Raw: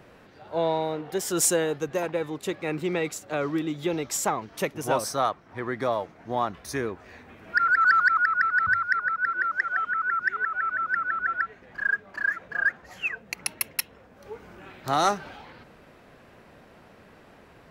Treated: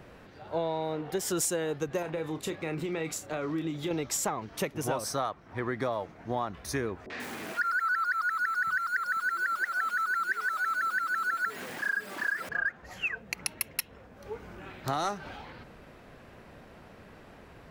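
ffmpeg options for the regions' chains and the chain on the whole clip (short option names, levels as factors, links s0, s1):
-filter_complex "[0:a]asettb=1/sr,asplit=3[s0][s1][s2];[s0]atrim=end=2.024[s3];[s1]atrim=start=2.02:end=3.91,asetpts=PTS-STARTPTS,afade=t=in:d=0.004:c=qsin,afade=t=out:st=1.886:d=0.004:c=qsin,acompressor=threshold=0.0316:ratio=4:attack=3.2:release=140:knee=1:detection=peak,asplit=2[s4][s5];[s5]adelay=31,volume=0.316[s6];[s4][s6]amix=inputs=2:normalize=0,atrim=end_sample=83349[s7];[s2]atrim=start=3.906[s8];[s3][s7]acrossfade=d=0.004:c1=hsin:c2=qsin[s9];[s9][s8]acrossfade=d=0.004:c1=qsin:c2=hsin,asettb=1/sr,asplit=3[s10][s11][s12];[s10]atrim=end=7.064[s13];[s11]atrim=start=7.06:end=12.49,asetpts=PTS-STARTPTS,afade=t=in:d=0.004:c=qsin,afade=t=out:st=5.426:d=0.004:c=qsin,aeval=exprs='val(0)+0.5*0.02*sgn(val(0))':c=same,highpass=230,acrossover=split=630|5100[s14][s15][s16];[s15]adelay=40[s17];[s16]adelay=140[s18];[s14][s17][s18]amix=inputs=3:normalize=0,atrim=end_sample=239463[s19];[s12]atrim=start=12.486[s20];[s13][s19]acrossfade=d=0.004:c1=hsin:c2=qsin[s21];[s21][s20]acrossfade=d=0.004:c1=qsin:c2=hsin,lowshelf=f=100:g=7,acompressor=threshold=0.0447:ratio=6"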